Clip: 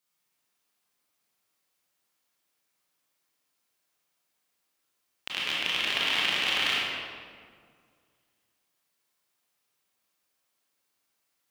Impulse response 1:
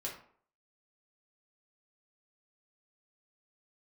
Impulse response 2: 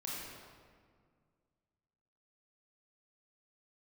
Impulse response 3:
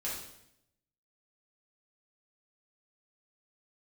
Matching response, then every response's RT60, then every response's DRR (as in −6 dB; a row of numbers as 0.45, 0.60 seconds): 2; 0.55, 1.9, 0.75 seconds; −4.0, −6.0, −7.5 decibels